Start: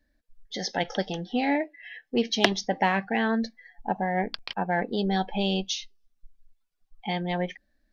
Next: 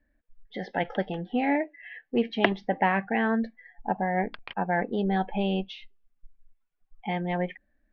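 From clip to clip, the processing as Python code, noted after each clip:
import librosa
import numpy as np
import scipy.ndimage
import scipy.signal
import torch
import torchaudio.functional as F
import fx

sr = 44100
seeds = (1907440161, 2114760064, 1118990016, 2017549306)

y = scipy.signal.sosfilt(scipy.signal.butter(4, 2600.0, 'lowpass', fs=sr, output='sos'), x)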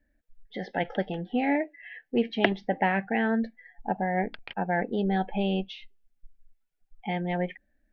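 y = fx.peak_eq(x, sr, hz=1100.0, db=-12.0, octaves=0.3)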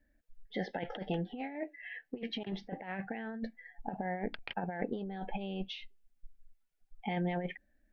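y = fx.over_compress(x, sr, threshold_db=-30.0, ratio=-0.5)
y = y * 10.0 ** (-5.5 / 20.0)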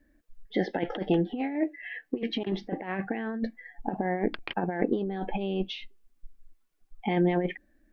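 y = fx.small_body(x, sr, hz=(330.0, 1100.0), ring_ms=25, db=10)
y = y * 10.0 ** (5.5 / 20.0)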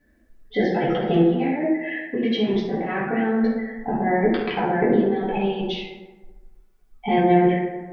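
y = fx.rev_fdn(x, sr, rt60_s=1.3, lf_ratio=0.95, hf_ratio=0.45, size_ms=41.0, drr_db=-8.0)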